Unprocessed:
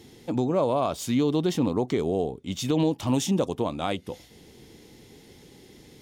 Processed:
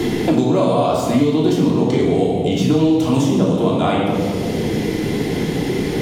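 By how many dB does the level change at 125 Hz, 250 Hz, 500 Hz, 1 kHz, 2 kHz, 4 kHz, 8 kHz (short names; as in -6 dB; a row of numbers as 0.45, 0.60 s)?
+11.5, +11.0, +10.0, +9.5, +13.0, +9.0, +4.5 dB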